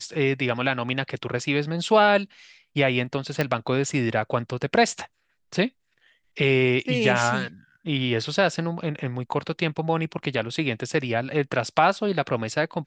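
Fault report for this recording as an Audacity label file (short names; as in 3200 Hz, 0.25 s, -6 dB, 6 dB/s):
3.410000	3.410000	pop -10 dBFS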